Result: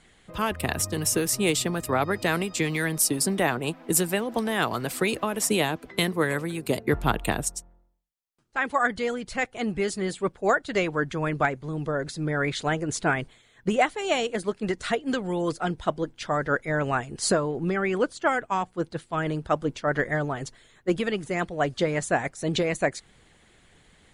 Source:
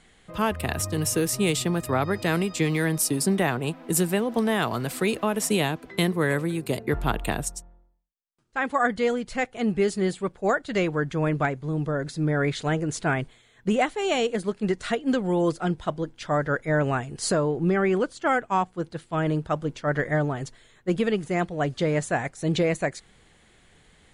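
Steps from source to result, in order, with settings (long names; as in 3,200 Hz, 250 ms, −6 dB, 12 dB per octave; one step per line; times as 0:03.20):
harmonic and percussive parts rebalanced harmonic −7 dB
level +2.5 dB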